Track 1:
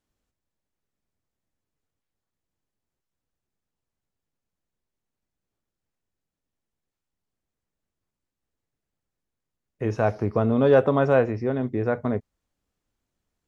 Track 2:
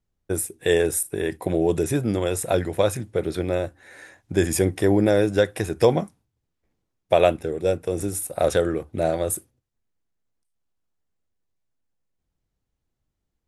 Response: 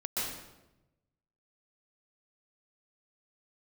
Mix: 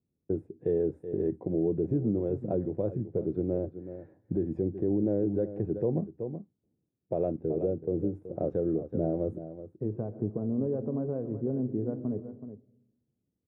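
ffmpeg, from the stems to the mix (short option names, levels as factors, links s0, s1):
-filter_complex "[0:a]acompressor=threshold=0.0794:ratio=6,volume=0.708,asplit=3[s0][s1][s2];[s1]volume=0.119[s3];[s2]volume=0.282[s4];[1:a]volume=1.26,asplit=2[s5][s6];[s6]volume=0.188[s7];[2:a]atrim=start_sample=2205[s8];[s3][s8]afir=irnorm=-1:irlink=0[s9];[s4][s7]amix=inputs=2:normalize=0,aecho=0:1:376:1[s10];[s0][s5][s9][s10]amix=inputs=4:normalize=0,asuperpass=centerf=210:order=4:qfactor=0.69,alimiter=limit=0.119:level=0:latency=1:release=409"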